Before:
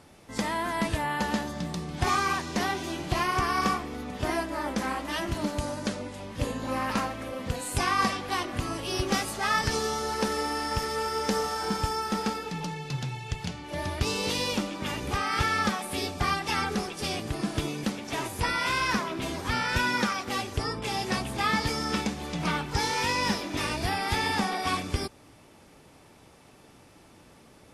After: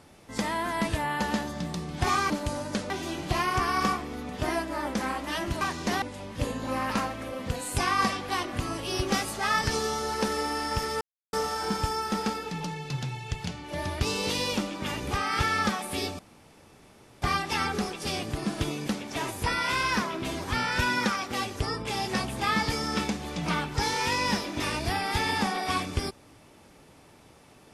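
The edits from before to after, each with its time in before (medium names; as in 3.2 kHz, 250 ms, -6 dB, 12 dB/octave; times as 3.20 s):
2.30–2.71 s: swap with 5.42–6.02 s
11.01–11.33 s: mute
16.19 s: insert room tone 1.03 s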